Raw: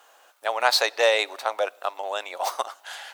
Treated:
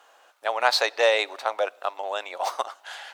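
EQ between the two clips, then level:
high-shelf EQ 8,500 Hz −11 dB
0.0 dB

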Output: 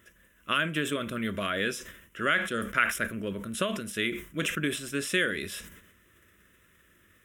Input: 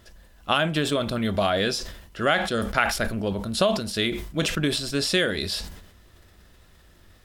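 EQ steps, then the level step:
high-pass filter 330 Hz 6 dB per octave
phaser with its sweep stopped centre 1,900 Hz, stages 4
0.0 dB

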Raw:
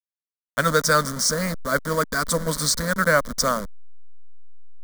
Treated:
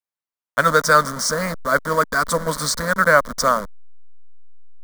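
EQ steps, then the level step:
parametric band 1,000 Hz +8.5 dB 2.1 octaves
−1.5 dB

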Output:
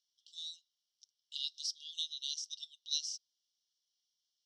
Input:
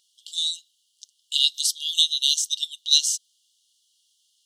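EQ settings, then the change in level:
dynamic equaliser 4,900 Hz, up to +6 dB, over −39 dBFS, Q 5.4
four-pole ladder band-pass 5,900 Hz, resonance 80%
high-frequency loss of the air 500 metres
+10.5 dB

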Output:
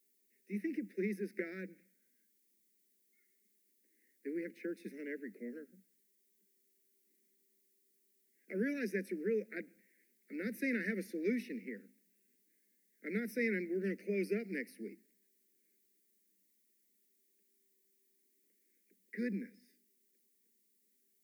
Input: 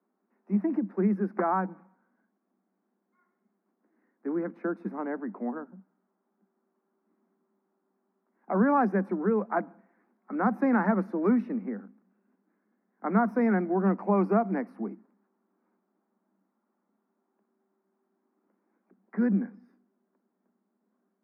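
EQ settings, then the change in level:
elliptic band-stop filter 460–2,000 Hz, stop band 50 dB
first difference
+17.5 dB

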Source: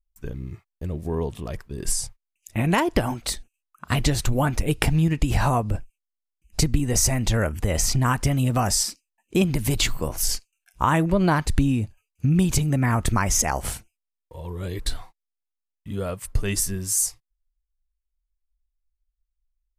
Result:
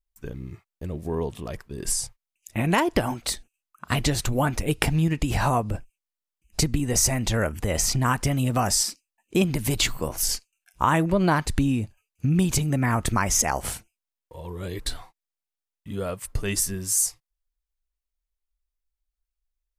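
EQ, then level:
low-shelf EQ 110 Hz −6.5 dB
0.0 dB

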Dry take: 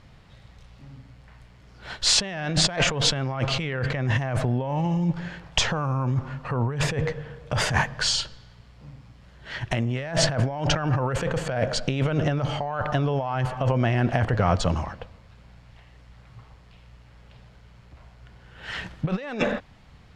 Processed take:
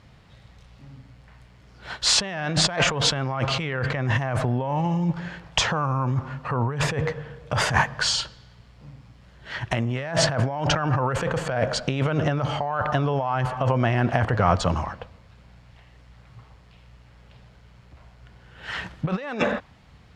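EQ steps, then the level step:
high-pass filter 40 Hz
dynamic equaliser 1,100 Hz, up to +5 dB, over −43 dBFS, Q 1.2
0.0 dB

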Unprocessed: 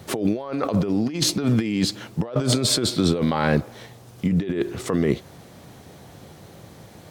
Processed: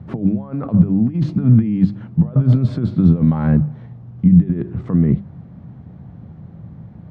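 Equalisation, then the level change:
low-pass filter 1,300 Hz 12 dB per octave
low shelf with overshoot 270 Hz +13 dB, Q 1.5
mains-hum notches 50/100/150/200 Hz
−3.5 dB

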